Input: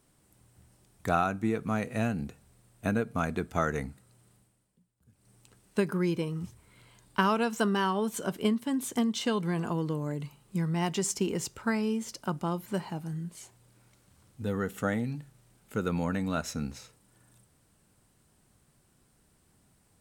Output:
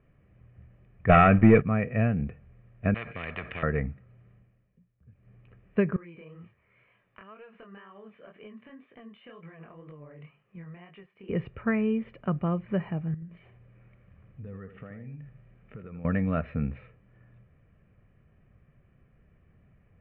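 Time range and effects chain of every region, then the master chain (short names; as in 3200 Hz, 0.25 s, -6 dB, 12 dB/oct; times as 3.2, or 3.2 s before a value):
1.09–1.62 synth low-pass 3400 Hz, resonance Q 1.6 + sample leveller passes 3
2.94–3.63 HPF 97 Hz + spectral compressor 10:1
5.96–11.29 HPF 770 Hz 6 dB/oct + compressor 12:1, threshold -42 dBFS + chorus 2 Hz, delay 19 ms, depth 7.5 ms
13.14–16.05 compressor 5:1, threshold -46 dBFS + echo 81 ms -9.5 dB
whole clip: steep low-pass 2500 Hz 48 dB/oct; bell 940 Hz -9.5 dB 1.8 oct; comb 1.7 ms, depth 47%; gain +6.5 dB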